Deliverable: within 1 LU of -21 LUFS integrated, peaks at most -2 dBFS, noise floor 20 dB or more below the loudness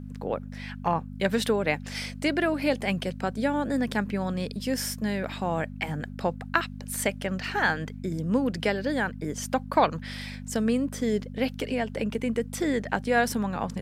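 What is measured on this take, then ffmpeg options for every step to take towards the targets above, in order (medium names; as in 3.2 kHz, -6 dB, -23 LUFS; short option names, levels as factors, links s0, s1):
hum 50 Hz; highest harmonic 250 Hz; hum level -37 dBFS; loudness -28.5 LUFS; peak level -4.5 dBFS; loudness target -21.0 LUFS
-> -af "bandreject=f=50:t=h:w=4,bandreject=f=100:t=h:w=4,bandreject=f=150:t=h:w=4,bandreject=f=200:t=h:w=4,bandreject=f=250:t=h:w=4"
-af "volume=2.37,alimiter=limit=0.794:level=0:latency=1"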